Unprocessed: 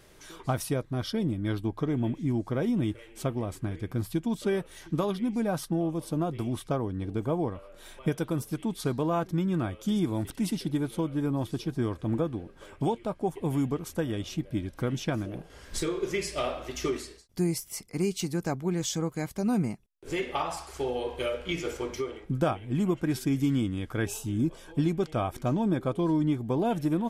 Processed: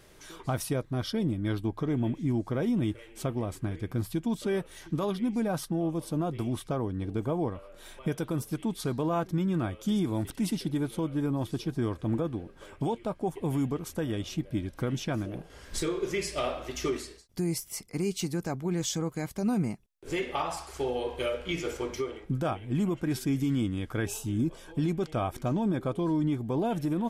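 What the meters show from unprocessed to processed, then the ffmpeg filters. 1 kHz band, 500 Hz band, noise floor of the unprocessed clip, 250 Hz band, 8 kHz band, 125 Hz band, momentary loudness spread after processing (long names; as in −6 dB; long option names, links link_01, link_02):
−1.0 dB, −1.0 dB, −53 dBFS, −1.0 dB, 0.0 dB, −0.5 dB, 6 LU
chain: -af "alimiter=limit=-20.5dB:level=0:latency=1:release=16"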